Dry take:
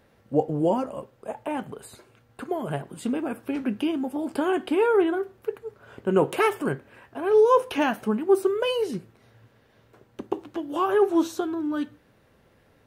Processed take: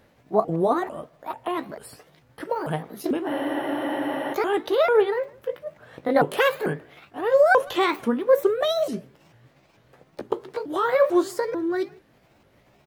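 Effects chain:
pitch shifter swept by a sawtooth +7 semitones, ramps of 444 ms
far-end echo of a speakerphone 160 ms, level −25 dB
frozen spectrum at 0:03.29, 1.05 s
level +2.5 dB

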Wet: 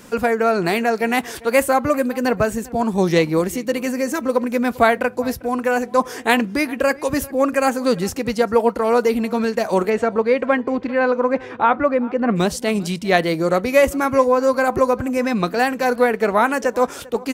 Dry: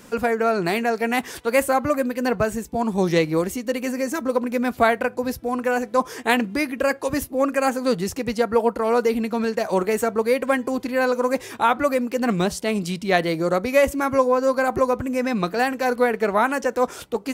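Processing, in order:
0:09.89–0:12.35: low-pass filter 3,800 Hz → 1,700 Hz 12 dB per octave
slap from a distant wall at 68 metres, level −21 dB
level +3 dB

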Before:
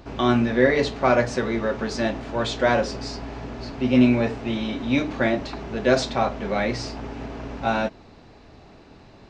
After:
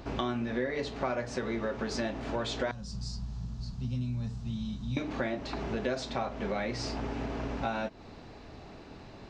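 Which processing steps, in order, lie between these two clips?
0:02.71–0:04.97: drawn EQ curve 200 Hz 0 dB, 280 Hz −25 dB, 570 Hz −26 dB, 1,100 Hz −18 dB, 2,200 Hz −26 dB, 4,000 Hz −9 dB, 7,700 Hz −4 dB
downward compressor 6 to 1, threshold −30 dBFS, peak gain reduction 17 dB

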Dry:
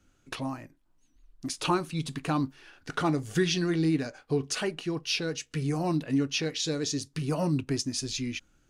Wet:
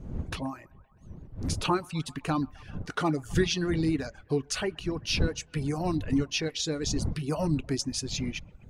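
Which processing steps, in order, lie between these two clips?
wind on the microphone 140 Hz −36 dBFS
delay with a band-pass on its return 129 ms, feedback 55%, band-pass 1,100 Hz, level −14.5 dB
reverb reduction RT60 0.61 s

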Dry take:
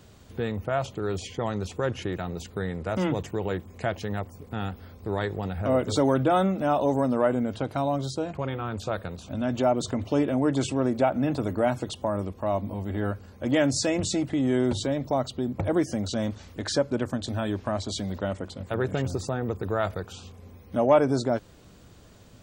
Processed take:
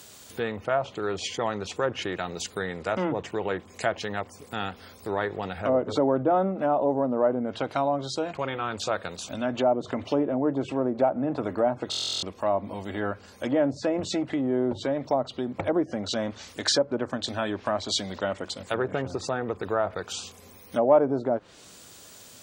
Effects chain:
treble cut that deepens with the level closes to 770 Hz, closed at −20.5 dBFS
RIAA equalisation recording
buffer that repeats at 0:11.90, samples 1,024, times 13
level +4 dB

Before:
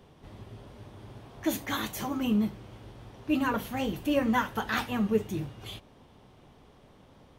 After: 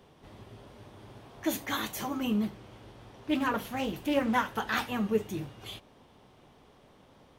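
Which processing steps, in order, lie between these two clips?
low-shelf EQ 190 Hz −6.5 dB
0:02.43–0:04.74: highs frequency-modulated by the lows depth 0.22 ms

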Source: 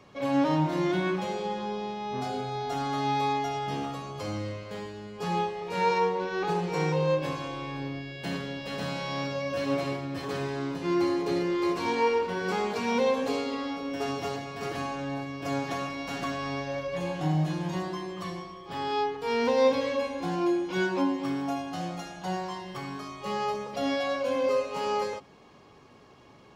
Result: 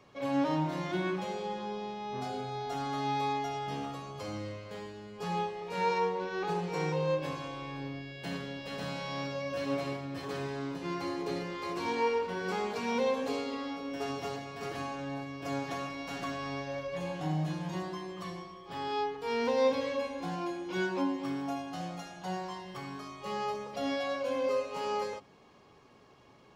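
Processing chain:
mains-hum notches 50/100/150/200/250/300/350 Hz
level −4.5 dB

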